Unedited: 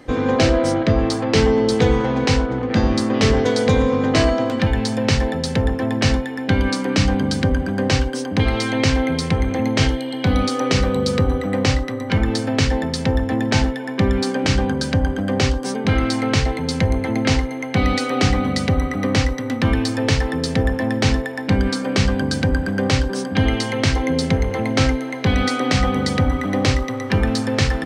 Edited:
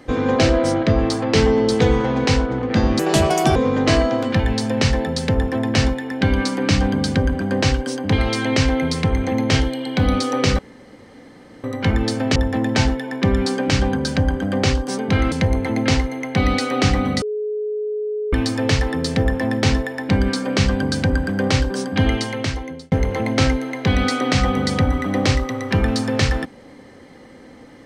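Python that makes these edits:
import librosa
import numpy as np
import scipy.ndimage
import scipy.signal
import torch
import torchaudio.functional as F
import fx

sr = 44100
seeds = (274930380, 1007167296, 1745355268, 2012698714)

y = fx.edit(x, sr, fx.speed_span(start_s=2.99, length_s=0.84, speed=1.48),
    fx.room_tone_fill(start_s=10.86, length_s=1.05),
    fx.cut(start_s=12.63, length_s=0.49),
    fx.cut(start_s=16.08, length_s=0.63),
    fx.bleep(start_s=18.61, length_s=1.11, hz=423.0, db=-21.0),
    fx.fade_out_span(start_s=23.49, length_s=0.82), tone=tone)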